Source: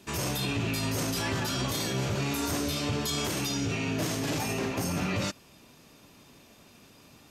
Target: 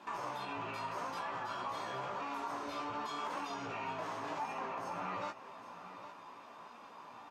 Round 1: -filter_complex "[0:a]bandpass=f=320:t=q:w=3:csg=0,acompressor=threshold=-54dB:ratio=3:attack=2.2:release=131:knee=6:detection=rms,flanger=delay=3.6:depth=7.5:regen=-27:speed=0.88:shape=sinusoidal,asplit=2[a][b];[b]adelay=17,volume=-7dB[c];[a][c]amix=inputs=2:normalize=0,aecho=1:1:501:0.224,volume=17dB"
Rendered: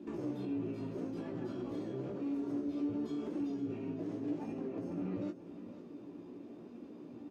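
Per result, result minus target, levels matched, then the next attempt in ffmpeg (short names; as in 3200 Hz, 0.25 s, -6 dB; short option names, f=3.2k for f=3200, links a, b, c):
1000 Hz band -18.0 dB; echo 0.306 s early
-filter_complex "[0:a]bandpass=f=1k:t=q:w=3:csg=0,acompressor=threshold=-54dB:ratio=3:attack=2.2:release=131:knee=6:detection=rms,flanger=delay=3.6:depth=7.5:regen=-27:speed=0.88:shape=sinusoidal,asplit=2[a][b];[b]adelay=17,volume=-7dB[c];[a][c]amix=inputs=2:normalize=0,aecho=1:1:501:0.224,volume=17dB"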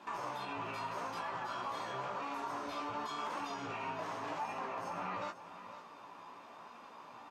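echo 0.306 s early
-filter_complex "[0:a]bandpass=f=1k:t=q:w=3:csg=0,acompressor=threshold=-54dB:ratio=3:attack=2.2:release=131:knee=6:detection=rms,flanger=delay=3.6:depth=7.5:regen=-27:speed=0.88:shape=sinusoidal,asplit=2[a][b];[b]adelay=17,volume=-7dB[c];[a][c]amix=inputs=2:normalize=0,aecho=1:1:807:0.224,volume=17dB"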